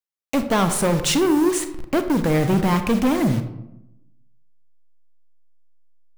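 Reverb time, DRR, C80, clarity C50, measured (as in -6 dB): 0.85 s, 8.5 dB, 12.5 dB, 10.5 dB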